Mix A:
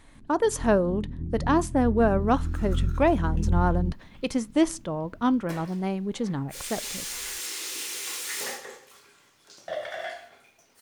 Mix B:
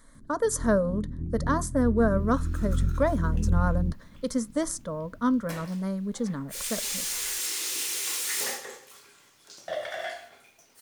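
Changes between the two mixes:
speech: add static phaser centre 530 Hz, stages 8; master: add treble shelf 5.1 kHz +5.5 dB

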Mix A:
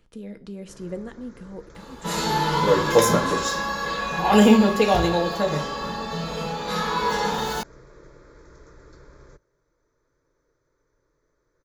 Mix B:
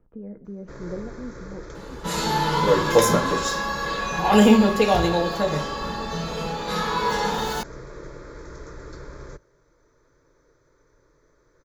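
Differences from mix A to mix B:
speech: add Bessel low-pass 940 Hz, order 4; first sound +9.5 dB

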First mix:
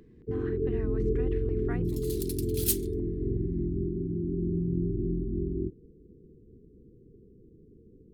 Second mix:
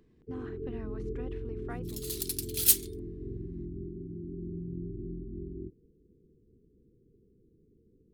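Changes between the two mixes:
speech: add peaking EQ 1.9 kHz -6.5 dB 0.69 oct; first sound -9.5 dB; second sound +6.0 dB

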